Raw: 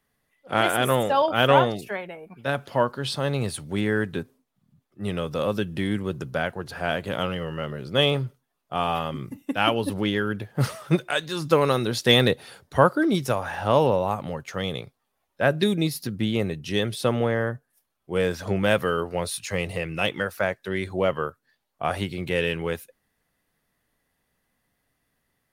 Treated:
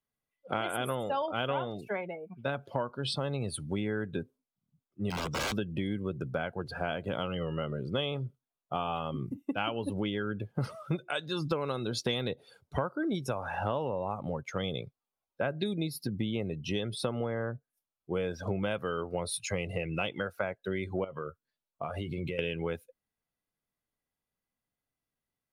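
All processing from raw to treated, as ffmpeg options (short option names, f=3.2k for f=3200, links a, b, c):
-filter_complex "[0:a]asettb=1/sr,asplit=3[a][b][c];[a]atrim=end=5.104[d];[b]atrim=start=5.1:end=5.54,asetpts=PTS-STARTPTS,afade=t=in:d=0.004:c=qsin,afade=t=out:st=0.436:d=0.004:c=qsin,lowpass=f=7.3k:t=q:w=3,aeval=exprs='(mod(15*val(0)+1,2)-1)/15':c=same[e];[c]atrim=start=5.536[f];[d][e]acrossfade=d=0.004:c1=hsin:c2=qsin[g];[g][f]acrossfade=d=0.004:c1=qsin:c2=hsin,asettb=1/sr,asplit=3[h][i][j];[h]atrim=end=21.044[k];[i]atrim=start=21.04:end=22.39,asetpts=PTS-STARTPTS,afade=t=in:d=0.004:c=qsin,afade=t=out:st=1.346:d=0.004:c=qsin,bandreject=f=790:w=8.7,asplit=2[l][m];[m]adelay=13,volume=-9.5dB[n];[l][n]amix=inputs=2:normalize=0,atrim=end_sample=59535,acompressor=threshold=-29dB:ratio=20:attack=3.2:release=140:knee=1:detection=peak[o];[j]atrim=start=22.386[p];[k][o]acrossfade=d=0.004:c1=hsin:c2=qsin[q];[q][p]acrossfade=d=0.004:c1=qsin:c2=hsin,afftdn=nr=17:nf=-37,bandreject=f=1.8k:w=6.2,acompressor=threshold=-29dB:ratio=6"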